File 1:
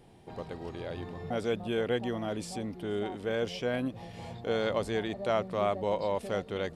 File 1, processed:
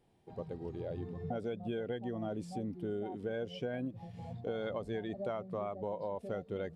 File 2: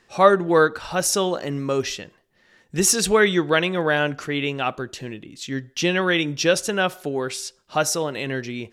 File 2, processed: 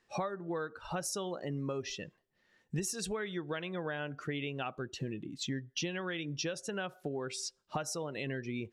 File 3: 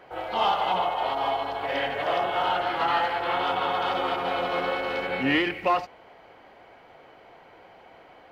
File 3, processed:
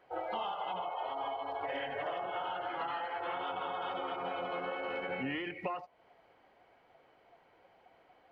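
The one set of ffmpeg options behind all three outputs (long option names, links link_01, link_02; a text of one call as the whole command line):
ffmpeg -i in.wav -af "afftdn=noise_reduction=14:noise_floor=-34,acompressor=threshold=-34dB:ratio=16,adynamicequalizer=threshold=0.002:dfrequency=150:dqfactor=2.2:tfrequency=150:tqfactor=2.2:attack=5:release=100:ratio=0.375:range=1.5:mode=boostabove:tftype=bell" out.wav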